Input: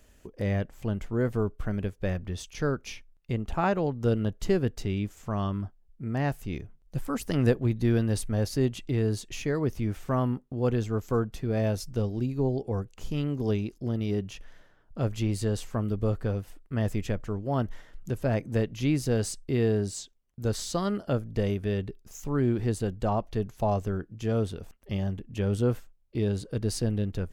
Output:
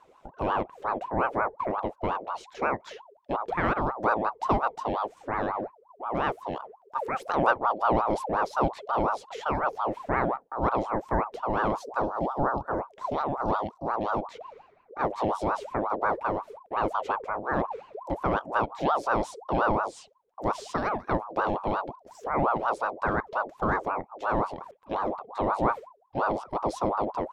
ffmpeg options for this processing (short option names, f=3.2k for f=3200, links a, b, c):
-af "aemphasis=mode=reproduction:type=75fm,aeval=exprs='val(0)*sin(2*PI*740*n/s+740*0.45/5.6*sin(2*PI*5.6*n/s))':c=same,volume=2dB"